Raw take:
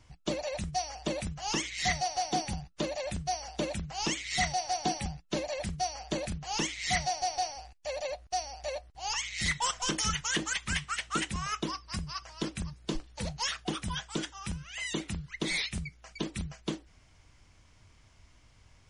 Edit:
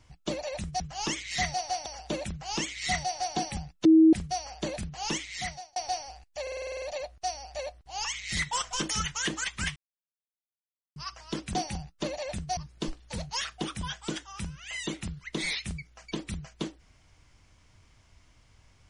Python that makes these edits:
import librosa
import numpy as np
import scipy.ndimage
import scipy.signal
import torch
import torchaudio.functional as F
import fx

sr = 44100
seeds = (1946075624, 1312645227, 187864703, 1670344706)

y = fx.edit(x, sr, fx.cut(start_s=0.8, length_s=0.47),
    fx.move(start_s=2.33, length_s=1.02, to_s=12.64),
    fx.bleep(start_s=5.34, length_s=0.28, hz=320.0, db=-13.5),
    fx.fade_out_span(start_s=6.65, length_s=0.6),
    fx.stutter(start_s=7.91, slice_s=0.05, count=9),
    fx.silence(start_s=10.85, length_s=1.2), tone=tone)